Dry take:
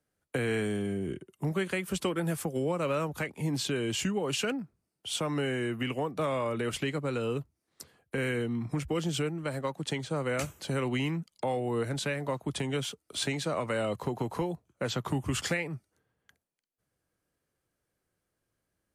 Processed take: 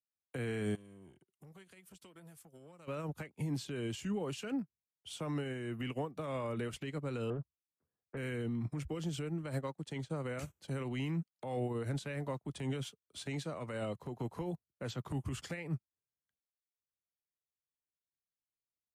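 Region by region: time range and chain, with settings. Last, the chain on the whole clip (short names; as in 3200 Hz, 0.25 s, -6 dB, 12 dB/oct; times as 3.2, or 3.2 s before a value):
0.75–2.88 high shelf 2300 Hz +10 dB + compressor 5:1, threshold -39 dBFS + core saturation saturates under 940 Hz
7.3–8.17 LPF 1600 Hz 24 dB/oct + Doppler distortion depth 0.33 ms
whole clip: low shelf 230 Hz +6.5 dB; limiter -26.5 dBFS; upward expander 2.5:1, over -51 dBFS; gain -1 dB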